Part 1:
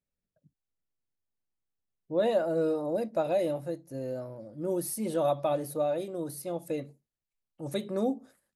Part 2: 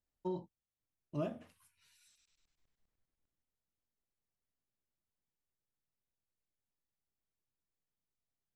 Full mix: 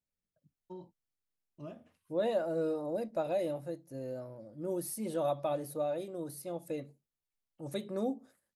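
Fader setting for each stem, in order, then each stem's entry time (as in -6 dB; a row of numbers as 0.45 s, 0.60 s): -5.0 dB, -8.5 dB; 0.00 s, 0.45 s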